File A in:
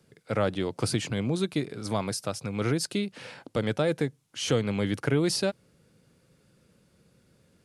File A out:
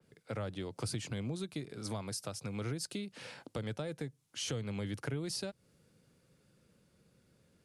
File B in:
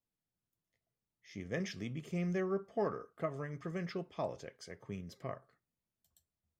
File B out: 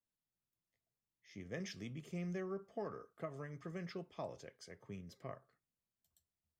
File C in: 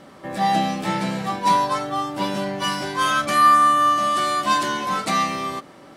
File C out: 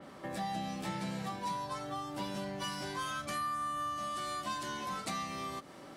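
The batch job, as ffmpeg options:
-filter_complex "[0:a]acrossover=split=120[s0][s1];[s1]acompressor=threshold=0.0224:ratio=4[s2];[s0][s2]amix=inputs=2:normalize=0,adynamicequalizer=threshold=0.00316:dfrequency=3700:dqfactor=0.7:tfrequency=3700:tqfactor=0.7:attack=5:release=100:ratio=0.375:range=2:mode=boostabove:tftype=highshelf,volume=0.531"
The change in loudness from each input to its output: -11.0 LU, -7.0 LU, -18.0 LU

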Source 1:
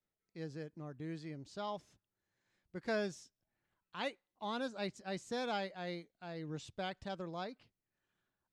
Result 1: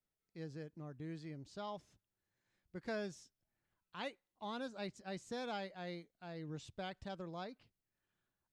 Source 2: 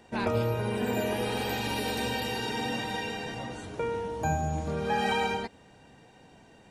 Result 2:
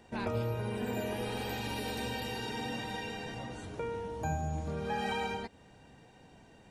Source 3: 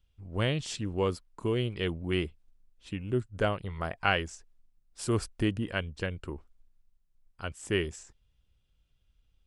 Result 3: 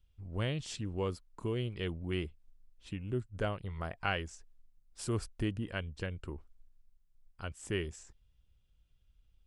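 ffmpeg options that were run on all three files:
-filter_complex "[0:a]lowshelf=f=120:g=5.5,asplit=2[s0][s1];[s1]acompressor=threshold=0.0126:ratio=6,volume=0.841[s2];[s0][s2]amix=inputs=2:normalize=0,volume=0.376"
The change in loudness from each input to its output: -4.0 LU, -6.0 LU, -6.0 LU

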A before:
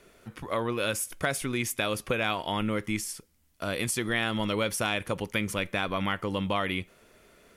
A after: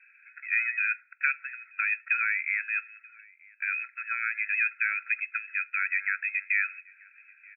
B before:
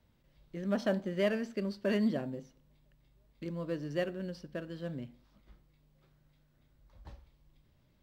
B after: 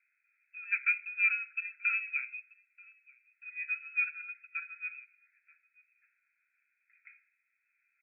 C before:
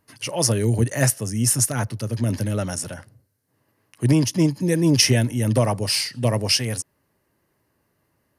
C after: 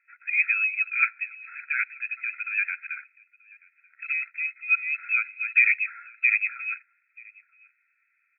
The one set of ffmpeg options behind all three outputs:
-filter_complex "[0:a]asplit=2[s0][s1];[s1]adelay=932.9,volume=0.0562,highshelf=f=4000:g=-21[s2];[s0][s2]amix=inputs=2:normalize=0,lowpass=f=2600:t=q:w=0.5098,lowpass=f=2600:t=q:w=0.6013,lowpass=f=2600:t=q:w=0.9,lowpass=f=2600:t=q:w=2.563,afreqshift=-3000,afftfilt=real='re*eq(mod(floor(b*sr/1024/1300),2),1)':imag='im*eq(mod(floor(b*sr/1024/1300),2),1)':win_size=1024:overlap=0.75,volume=1.5"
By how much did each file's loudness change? +1.5 LU, +3.0 LU, -3.5 LU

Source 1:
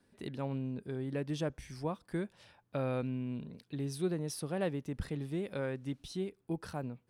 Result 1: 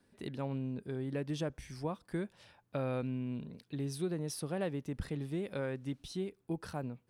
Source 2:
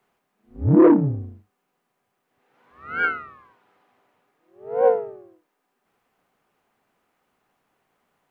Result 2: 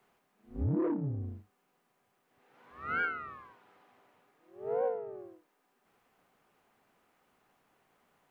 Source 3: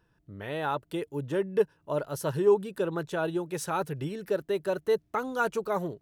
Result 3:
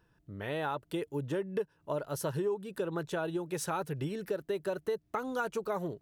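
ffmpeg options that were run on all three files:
-af "acompressor=threshold=0.0316:ratio=6"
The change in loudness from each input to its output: -1.0 LU, -15.5 LU, -5.5 LU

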